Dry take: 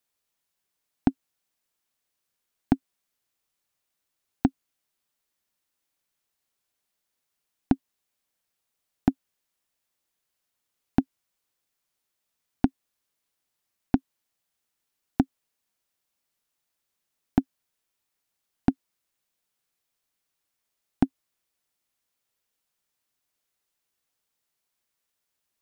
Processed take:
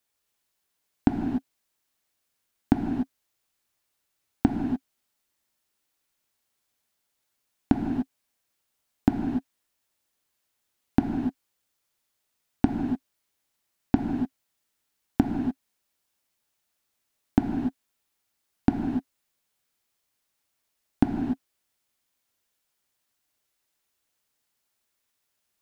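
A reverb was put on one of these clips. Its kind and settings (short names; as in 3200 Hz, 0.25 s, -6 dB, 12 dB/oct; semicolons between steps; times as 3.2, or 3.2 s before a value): non-linear reverb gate 0.32 s flat, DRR 1.5 dB; gain +1 dB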